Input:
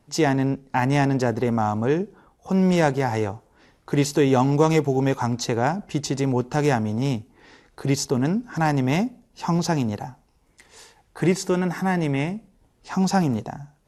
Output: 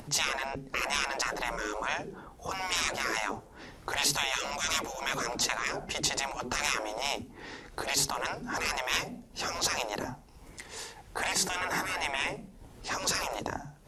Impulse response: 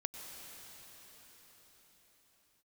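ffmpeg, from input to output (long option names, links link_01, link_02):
-af "afftfilt=real='re*lt(hypot(re,im),0.0891)':imag='im*lt(hypot(re,im),0.0891)':win_size=1024:overlap=0.75,acompressor=mode=upward:threshold=-46dB:ratio=2.5,volume=5.5dB"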